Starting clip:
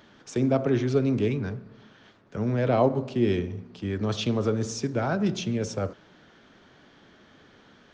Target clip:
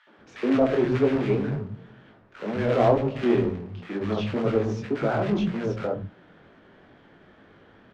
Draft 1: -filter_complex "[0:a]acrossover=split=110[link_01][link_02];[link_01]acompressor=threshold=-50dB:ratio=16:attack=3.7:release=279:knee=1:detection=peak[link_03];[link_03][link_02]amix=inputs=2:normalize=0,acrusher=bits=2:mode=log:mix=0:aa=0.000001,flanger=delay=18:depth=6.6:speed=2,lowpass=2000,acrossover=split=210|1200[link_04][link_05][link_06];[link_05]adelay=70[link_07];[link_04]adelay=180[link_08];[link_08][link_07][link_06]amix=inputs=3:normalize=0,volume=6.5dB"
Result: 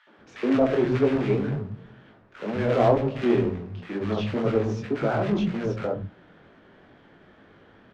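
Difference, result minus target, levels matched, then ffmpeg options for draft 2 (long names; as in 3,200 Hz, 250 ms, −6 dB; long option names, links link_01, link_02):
downward compressor: peak gain reduction −8 dB
-filter_complex "[0:a]acrossover=split=110[link_01][link_02];[link_01]acompressor=threshold=-58.5dB:ratio=16:attack=3.7:release=279:knee=1:detection=peak[link_03];[link_03][link_02]amix=inputs=2:normalize=0,acrusher=bits=2:mode=log:mix=0:aa=0.000001,flanger=delay=18:depth=6.6:speed=2,lowpass=2000,acrossover=split=210|1200[link_04][link_05][link_06];[link_05]adelay=70[link_07];[link_04]adelay=180[link_08];[link_08][link_07][link_06]amix=inputs=3:normalize=0,volume=6.5dB"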